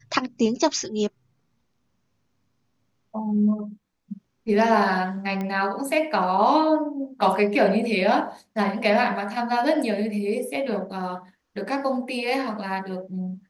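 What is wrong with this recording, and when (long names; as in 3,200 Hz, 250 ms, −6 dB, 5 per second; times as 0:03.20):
0:05.41: click −18 dBFS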